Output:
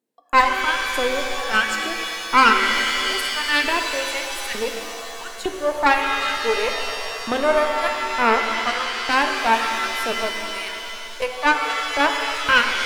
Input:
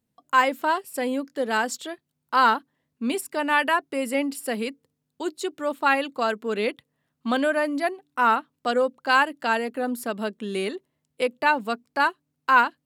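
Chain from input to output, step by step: LFO high-pass saw up 1.1 Hz 320–2400 Hz; Chebyshev shaper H 4 -11 dB, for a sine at -2.5 dBFS; pitch-shifted reverb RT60 2.8 s, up +7 st, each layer -2 dB, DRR 4.5 dB; trim -2 dB

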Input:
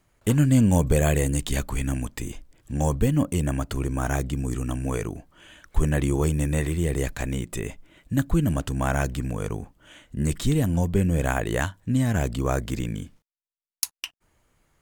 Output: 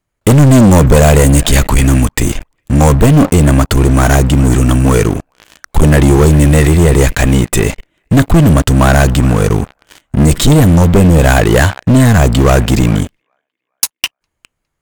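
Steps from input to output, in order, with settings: feedback echo behind a band-pass 409 ms, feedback 38%, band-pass 1.4 kHz, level -19 dB; waveshaping leveller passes 5; trim +2.5 dB

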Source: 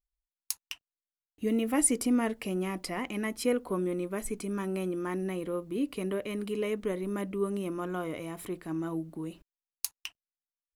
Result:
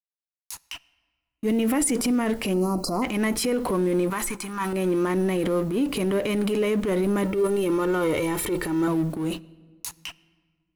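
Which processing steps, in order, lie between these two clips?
companding laws mixed up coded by mu; 2.54–3.02 s: spectral selection erased 1.4–4 kHz; 4.10–4.73 s: resonant low shelf 730 Hz -9 dB, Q 3; 7.23–8.88 s: comb 2.2 ms, depth 67%; gate -41 dBFS, range -55 dB; transient shaper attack -8 dB, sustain +6 dB; peak limiter -26 dBFS, peak gain reduction 11 dB; level rider; on a send: reverberation RT60 1.6 s, pre-delay 14 ms, DRR 21 dB; on the sum: trim -2 dB

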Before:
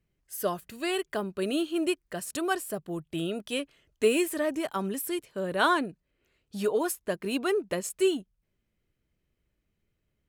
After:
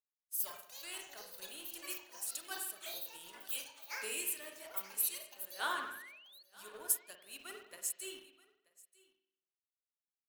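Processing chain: differentiator; spring tank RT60 1.2 s, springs 47 ms, chirp 40 ms, DRR 1.5 dB; in parallel at -8 dB: bit crusher 7-bit; on the sum: ever faster or slower copies 167 ms, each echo +7 st, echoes 2; painted sound rise, 5.59–6.43 s, 740–4500 Hz -44 dBFS; on a send: delay 933 ms -13.5 dB; on the sum: three bands expanded up and down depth 70%; trim -7.5 dB

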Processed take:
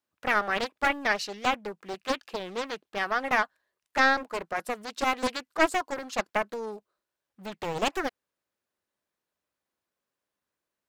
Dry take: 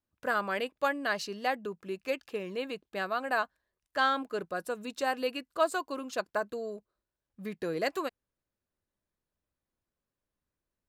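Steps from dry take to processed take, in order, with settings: high-pass 580 Hz 6 dB/octave; treble shelf 4.9 kHz -4.5 dB; loudspeaker Doppler distortion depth 0.67 ms; trim +6.5 dB

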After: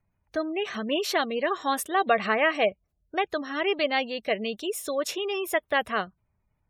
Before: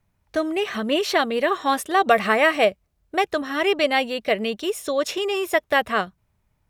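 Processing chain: spectral gate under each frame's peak -30 dB strong; treble shelf 7.3 kHz +8.5 dB; trim -5.5 dB

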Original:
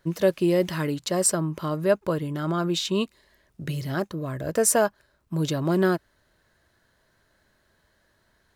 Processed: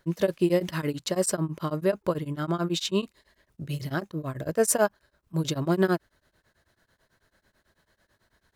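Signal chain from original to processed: tremolo of two beating tones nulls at 9.1 Hz; trim +1 dB

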